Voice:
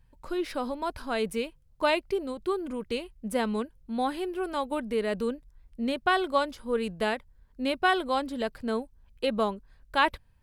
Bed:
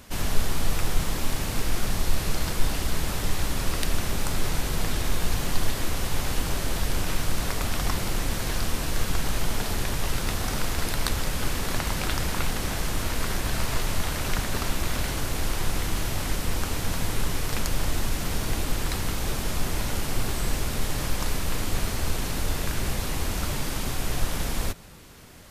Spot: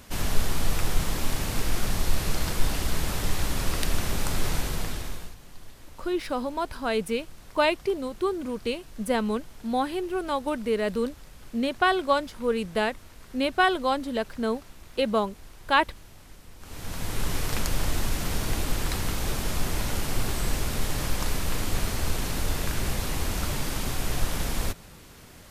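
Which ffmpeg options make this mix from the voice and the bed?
ffmpeg -i stem1.wav -i stem2.wav -filter_complex "[0:a]adelay=5750,volume=2.5dB[link_01];[1:a]volume=20.5dB,afade=type=out:start_time=4.54:duration=0.81:silence=0.0891251,afade=type=in:start_time=16.59:duration=0.76:silence=0.0891251[link_02];[link_01][link_02]amix=inputs=2:normalize=0" out.wav

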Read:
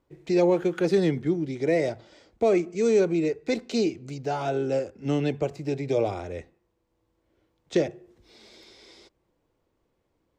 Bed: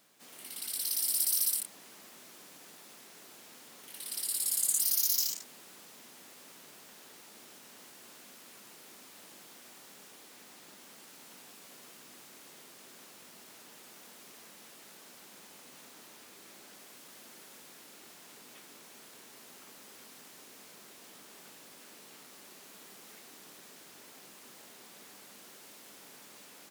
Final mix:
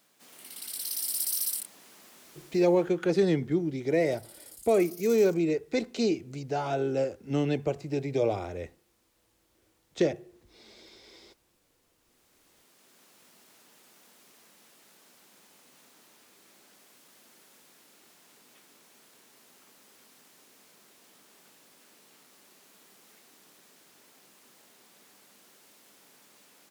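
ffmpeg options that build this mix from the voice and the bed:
ffmpeg -i stem1.wav -i stem2.wav -filter_complex "[0:a]adelay=2250,volume=-2dB[link_01];[1:a]volume=12.5dB,afade=type=out:start_time=2.42:duration=0.49:silence=0.125893,afade=type=in:start_time=11.97:duration=1.28:silence=0.211349[link_02];[link_01][link_02]amix=inputs=2:normalize=0" out.wav

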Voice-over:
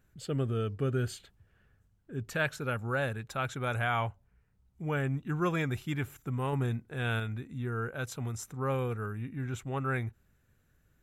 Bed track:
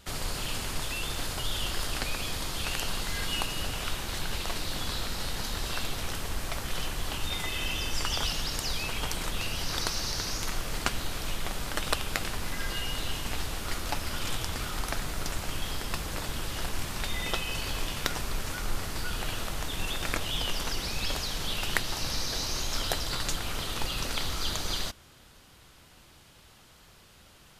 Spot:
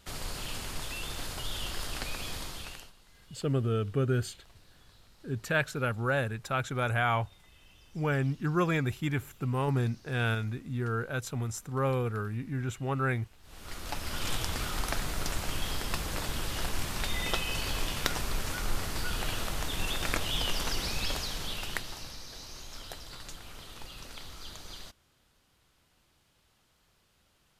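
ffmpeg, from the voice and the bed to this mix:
ffmpeg -i stem1.wav -i stem2.wav -filter_complex "[0:a]adelay=3150,volume=2.5dB[link_01];[1:a]volume=23dB,afade=type=out:start_time=2.37:duration=0.55:silence=0.0707946,afade=type=in:start_time=13.42:duration=0.91:silence=0.0421697,afade=type=out:start_time=20.85:duration=1.32:silence=0.211349[link_02];[link_01][link_02]amix=inputs=2:normalize=0" out.wav

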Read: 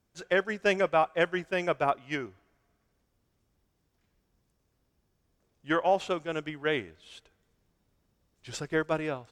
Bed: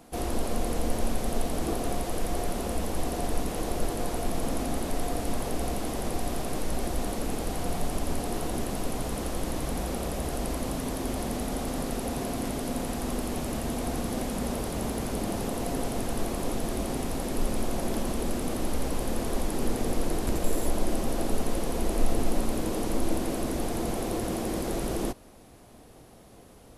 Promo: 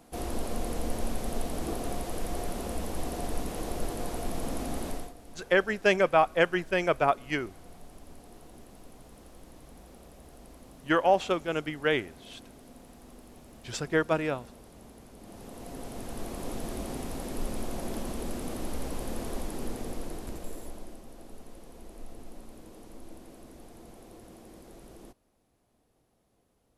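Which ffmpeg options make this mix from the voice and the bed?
ffmpeg -i stem1.wav -i stem2.wav -filter_complex "[0:a]adelay=5200,volume=2.5dB[link_01];[1:a]volume=10.5dB,afade=type=out:start_time=4.88:duration=0.25:silence=0.158489,afade=type=in:start_time=15.17:duration=1.43:silence=0.188365,afade=type=out:start_time=19.25:duration=1.76:silence=0.188365[link_02];[link_01][link_02]amix=inputs=2:normalize=0" out.wav

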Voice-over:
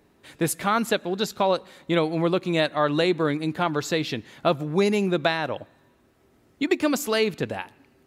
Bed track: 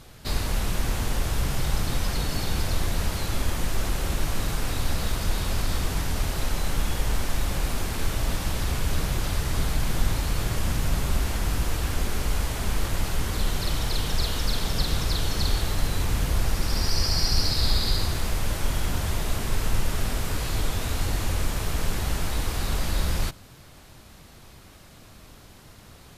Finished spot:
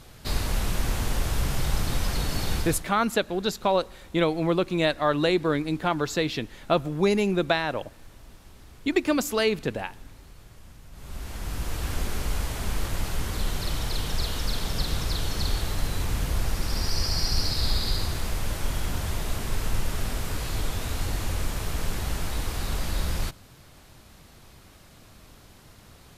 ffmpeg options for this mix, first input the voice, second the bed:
ffmpeg -i stem1.wav -i stem2.wav -filter_complex "[0:a]adelay=2250,volume=-1dB[link_01];[1:a]volume=20dB,afade=type=out:start_time=2.54:duration=0.32:silence=0.0749894,afade=type=in:start_time=10.92:duration=1.01:silence=0.0944061[link_02];[link_01][link_02]amix=inputs=2:normalize=0" out.wav

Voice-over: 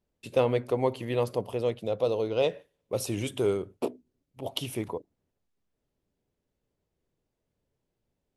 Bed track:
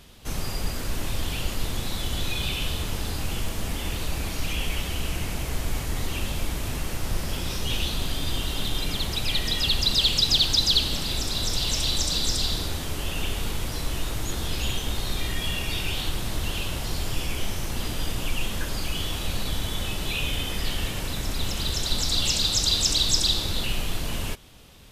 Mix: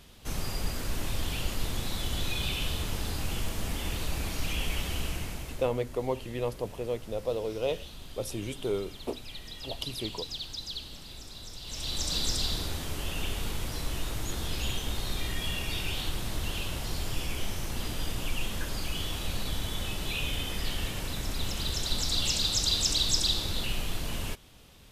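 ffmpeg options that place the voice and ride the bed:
ffmpeg -i stem1.wav -i stem2.wav -filter_complex "[0:a]adelay=5250,volume=-4.5dB[link_01];[1:a]volume=9.5dB,afade=type=out:start_time=4.98:duration=0.74:silence=0.199526,afade=type=in:start_time=11.63:duration=0.54:silence=0.223872[link_02];[link_01][link_02]amix=inputs=2:normalize=0" out.wav

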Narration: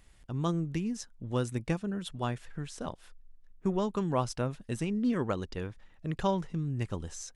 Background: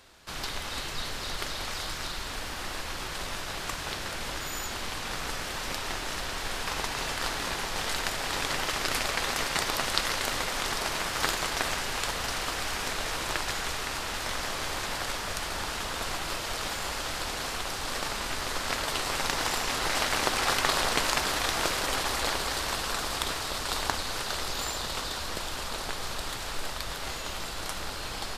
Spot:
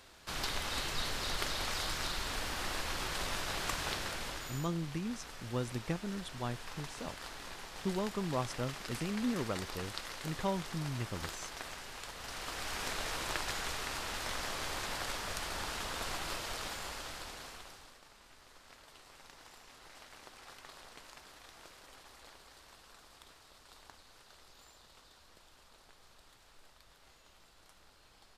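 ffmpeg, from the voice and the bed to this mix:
ffmpeg -i stem1.wav -i stem2.wav -filter_complex "[0:a]adelay=4200,volume=-5.5dB[link_01];[1:a]volume=7dB,afade=type=out:start_time=3.85:duration=0.86:silence=0.223872,afade=type=in:start_time=12.15:duration=0.72:silence=0.354813,afade=type=out:start_time=16.28:duration=1.69:silence=0.0891251[link_02];[link_01][link_02]amix=inputs=2:normalize=0" out.wav

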